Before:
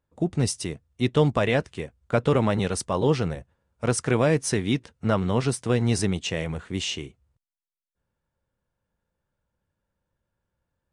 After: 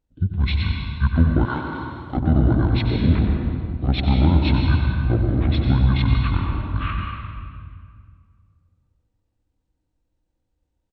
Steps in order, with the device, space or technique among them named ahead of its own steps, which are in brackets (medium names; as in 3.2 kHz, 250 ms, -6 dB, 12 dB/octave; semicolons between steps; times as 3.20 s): monster voice (pitch shift -10.5 st; formant shift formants -4.5 st; bass shelf 230 Hz +4.5 dB; delay 93 ms -9.5 dB; reverberation RT60 2.0 s, pre-delay 114 ms, DRR 2 dB); 1.45–2.17 s: tilt EQ +4 dB/octave